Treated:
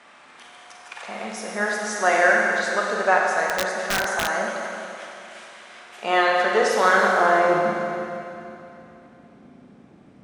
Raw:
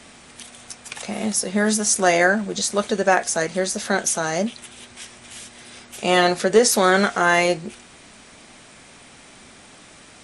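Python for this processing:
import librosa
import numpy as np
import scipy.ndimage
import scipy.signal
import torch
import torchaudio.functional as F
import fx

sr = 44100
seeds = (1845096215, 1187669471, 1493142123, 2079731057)

y = fx.filter_sweep_bandpass(x, sr, from_hz=1200.0, to_hz=210.0, start_s=6.96, end_s=7.63, q=1.1)
y = fx.rev_schroeder(y, sr, rt60_s=2.9, comb_ms=32, drr_db=-1.5)
y = fx.overflow_wrap(y, sr, gain_db=15.5, at=(3.46, 4.32))
y = F.gain(torch.from_numpy(y), 1.0).numpy()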